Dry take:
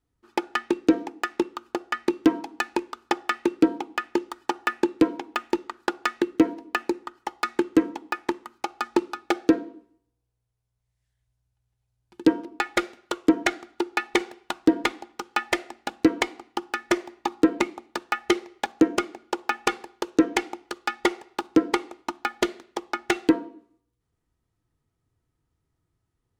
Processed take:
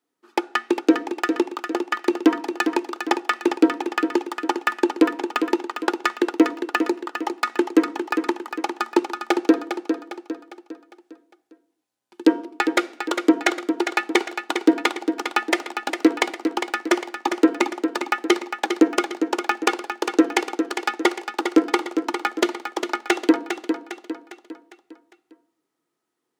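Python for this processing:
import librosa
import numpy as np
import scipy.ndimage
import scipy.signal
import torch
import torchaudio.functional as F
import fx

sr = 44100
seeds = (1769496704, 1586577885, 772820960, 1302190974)

y = scipy.signal.sosfilt(scipy.signal.butter(4, 260.0, 'highpass', fs=sr, output='sos'), x)
y = fx.echo_feedback(y, sr, ms=404, feedback_pct=45, wet_db=-7.5)
y = F.gain(torch.from_numpy(y), 3.5).numpy()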